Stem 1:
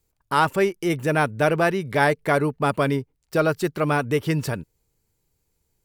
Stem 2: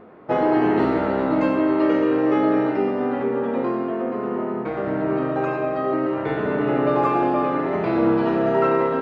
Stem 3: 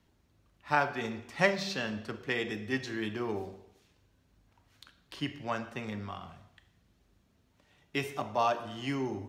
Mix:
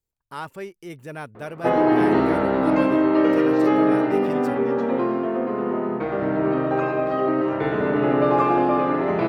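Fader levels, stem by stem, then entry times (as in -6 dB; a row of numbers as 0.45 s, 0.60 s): -14.0 dB, +1.0 dB, -13.5 dB; 0.00 s, 1.35 s, 1.95 s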